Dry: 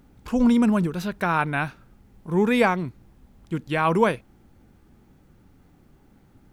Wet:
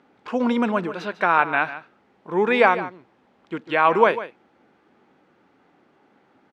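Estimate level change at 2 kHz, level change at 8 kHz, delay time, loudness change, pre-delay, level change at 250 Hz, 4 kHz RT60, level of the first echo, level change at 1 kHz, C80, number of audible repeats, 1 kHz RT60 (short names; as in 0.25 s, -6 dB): +5.0 dB, n/a, 0.148 s, +2.0 dB, none, -4.5 dB, none, -14.0 dB, +5.5 dB, none, 1, none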